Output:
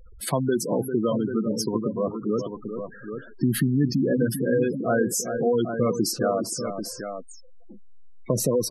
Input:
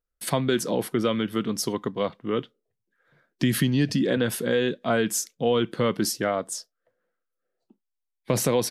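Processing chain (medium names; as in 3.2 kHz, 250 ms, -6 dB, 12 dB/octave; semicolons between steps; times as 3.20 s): jump at every zero crossing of -38 dBFS; multi-tap echo 397/790 ms -8.5/-8.5 dB; spectral gate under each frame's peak -15 dB strong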